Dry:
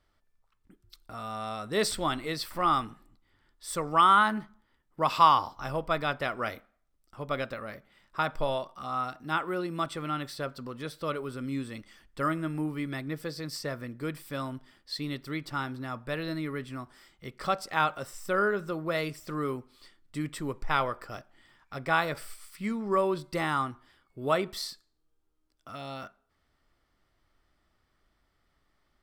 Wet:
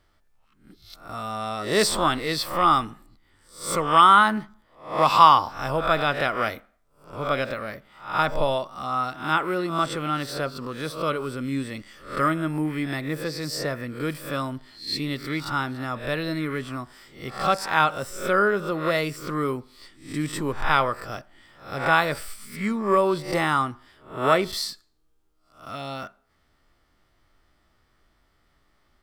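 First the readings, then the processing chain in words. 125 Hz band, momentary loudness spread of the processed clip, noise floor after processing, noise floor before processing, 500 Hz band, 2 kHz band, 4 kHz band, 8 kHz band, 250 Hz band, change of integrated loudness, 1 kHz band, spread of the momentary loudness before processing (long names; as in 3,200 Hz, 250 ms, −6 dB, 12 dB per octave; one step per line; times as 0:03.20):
+6.0 dB, 15 LU, −66 dBFS, −74 dBFS, +6.5 dB, +7.0 dB, +7.5 dB, +7.5 dB, +6.0 dB, +6.5 dB, +7.0 dB, 15 LU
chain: peak hold with a rise ahead of every peak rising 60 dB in 0.42 s
level +5.5 dB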